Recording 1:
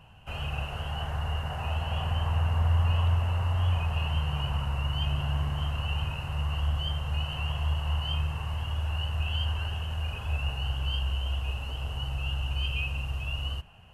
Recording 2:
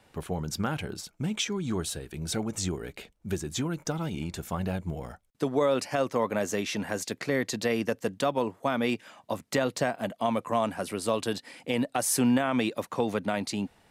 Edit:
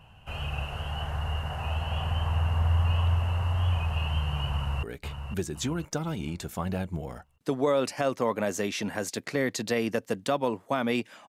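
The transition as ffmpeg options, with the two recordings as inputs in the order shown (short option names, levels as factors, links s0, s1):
-filter_complex "[0:a]apad=whole_dur=11.28,atrim=end=11.28,atrim=end=4.832[s0];[1:a]atrim=start=2.768:end=9.22[s1];[s0][s1]acrossfade=d=0.004:c1=hsin:c2=hsin,asplit=2[s2][s3];[s3]afade=t=in:st=4.52:d=0.01,afade=t=out:st=4.83:d=0.01,aecho=0:1:510|1020|1530|2040|2550:0.421697|0.168679|0.0674714|0.0269886|0.0107954[s4];[s2][s4]amix=inputs=2:normalize=0"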